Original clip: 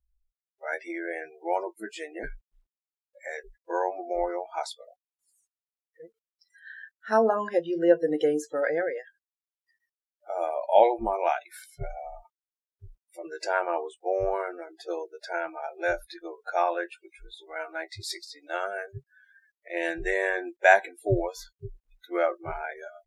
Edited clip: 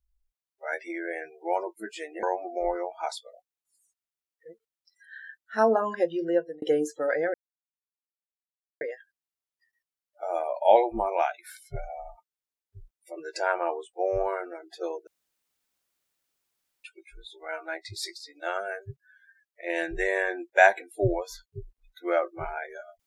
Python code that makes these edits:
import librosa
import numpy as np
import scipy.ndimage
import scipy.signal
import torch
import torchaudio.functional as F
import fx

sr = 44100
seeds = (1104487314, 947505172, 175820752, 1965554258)

y = fx.edit(x, sr, fx.cut(start_s=2.23, length_s=1.54),
    fx.fade_out_span(start_s=7.7, length_s=0.46),
    fx.insert_silence(at_s=8.88, length_s=1.47),
    fx.room_tone_fill(start_s=15.14, length_s=1.77), tone=tone)